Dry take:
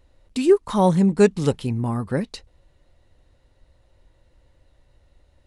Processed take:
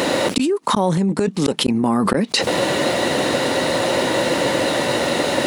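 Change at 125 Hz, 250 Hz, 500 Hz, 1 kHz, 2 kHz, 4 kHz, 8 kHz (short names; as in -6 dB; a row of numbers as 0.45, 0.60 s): 0.0, +4.0, +4.0, +9.0, +15.5, +19.0, +15.0 dB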